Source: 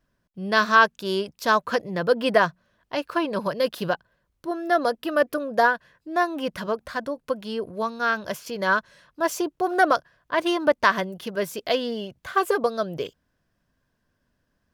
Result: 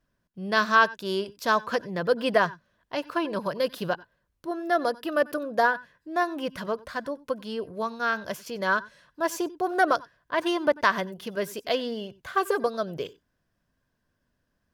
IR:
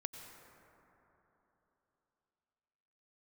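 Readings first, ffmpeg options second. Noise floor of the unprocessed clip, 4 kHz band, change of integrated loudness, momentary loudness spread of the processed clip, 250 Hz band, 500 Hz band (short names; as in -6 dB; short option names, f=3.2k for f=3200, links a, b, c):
-74 dBFS, -3.0 dB, -3.0 dB, 11 LU, -3.0 dB, -3.0 dB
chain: -filter_complex "[1:a]atrim=start_sample=2205,atrim=end_sample=3969,asetrate=41895,aresample=44100[a];[0:a][a]afir=irnorm=-1:irlink=0"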